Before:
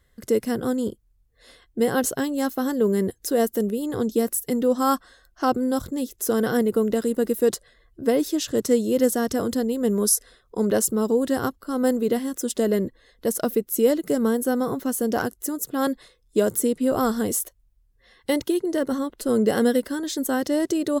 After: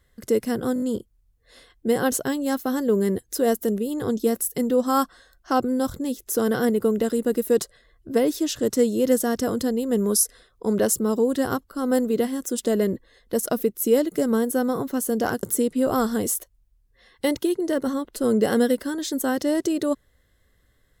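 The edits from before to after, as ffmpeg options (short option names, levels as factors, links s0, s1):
-filter_complex "[0:a]asplit=6[s0][s1][s2][s3][s4][s5];[s0]atrim=end=0.762[s6];[s1]atrim=start=0.738:end=0.762[s7];[s2]atrim=start=0.738:end=0.762[s8];[s3]atrim=start=0.738:end=0.762[s9];[s4]atrim=start=0.738:end=15.352[s10];[s5]atrim=start=16.478[s11];[s6][s7]acrossfade=d=0.004:c1=hsin:c2=hsin[s12];[s12][s8]acrossfade=d=0.004:c1=hsin:c2=hsin[s13];[s13][s9]acrossfade=d=0.004:c1=hsin:c2=hsin[s14];[s14][s10]acrossfade=d=0.004:c1=hsin:c2=hsin[s15];[s15][s11]acrossfade=d=0.004:c1=hsin:c2=hsin"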